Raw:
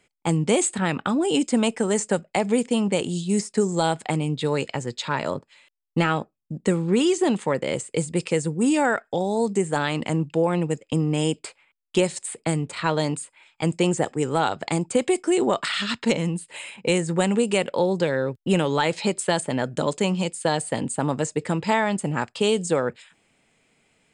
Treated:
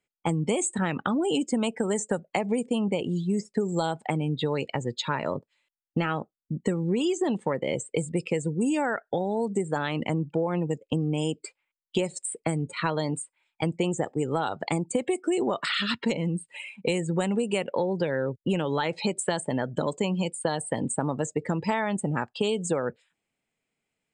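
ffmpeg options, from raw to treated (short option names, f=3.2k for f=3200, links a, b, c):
-filter_complex "[0:a]asettb=1/sr,asplit=3[a][b][c];[a]atrim=end=2.794[d];[b]atrim=start=2.79:end=3.66,asetpts=PTS-STARTPTS,afade=t=in:d=0.004:c=qsin,afade=t=out:st=0.866:d=0.004:c=qsin,highshelf=f=6.9k:g=-8[e];[c]atrim=start=3.656[f];[d][e]acrossfade=d=0.004:c1=hsin:c2=qsin[g];[g][f]acrossfade=d=0.004:c1=qsin:c2=hsin,afftdn=nr=20:nf=-34,acompressor=threshold=-25dB:ratio=4,volume=1.5dB"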